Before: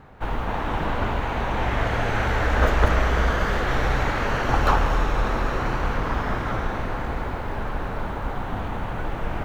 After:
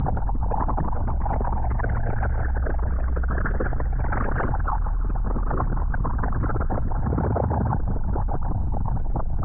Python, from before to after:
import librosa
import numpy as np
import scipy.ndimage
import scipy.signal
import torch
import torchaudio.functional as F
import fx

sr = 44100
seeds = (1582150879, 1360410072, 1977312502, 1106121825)

y = fx.envelope_sharpen(x, sr, power=3.0)
y = fx.highpass(y, sr, hz=75.0, slope=24, at=(7.04, 7.77))
y = fx.echo_wet_highpass(y, sr, ms=166, feedback_pct=63, hz=1400.0, wet_db=-14.0)
y = fx.tremolo_shape(y, sr, shape='saw_down', hz=10.0, depth_pct=50)
y = scipy.signal.sosfilt(scipy.signal.ellip(4, 1.0, 40, 3800.0, 'lowpass', fs=sr, output='sos'), y)
y = fx.env_flatten(y, sr, amount_pct=100)
y = y * librosa.db_to_amplitude(-5.5)